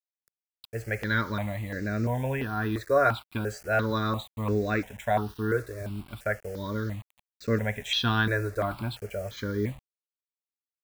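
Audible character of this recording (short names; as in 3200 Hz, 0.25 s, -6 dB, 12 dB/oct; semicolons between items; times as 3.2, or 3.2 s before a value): a quantiser's noise floor 8-bit, dither none; notches that jump at a steady rate 2.9 Hz 840–3200 Hz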